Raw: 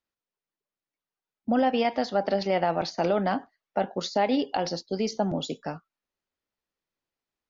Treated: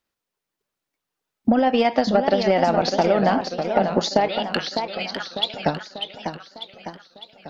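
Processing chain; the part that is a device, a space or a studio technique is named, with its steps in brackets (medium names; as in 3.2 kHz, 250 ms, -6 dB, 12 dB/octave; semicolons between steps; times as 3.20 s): 4.28–5.54 s: Chebyshev band-pass 1.3–4.1 kHz, order 3; drum-bus smash (transient shaper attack +8 dB, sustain +1 dB; compression, threshold -21 dBFS, peak gain reduction 8 dB; saturation -13.5 dBFS, distortion -21 dB); modulated delay 598 ms, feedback 52%, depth 199 cents, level -7 dB; trim +8 dB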